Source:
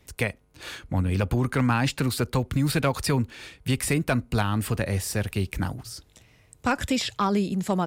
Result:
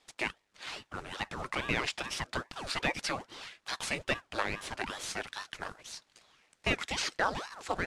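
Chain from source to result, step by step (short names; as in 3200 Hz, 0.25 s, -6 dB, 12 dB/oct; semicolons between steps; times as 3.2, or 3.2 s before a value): CVSD 64 kbps; BPF 620–6500 Hz; ring modulator with a swept carrier 770 Hz, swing 85%, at 2.4 Hz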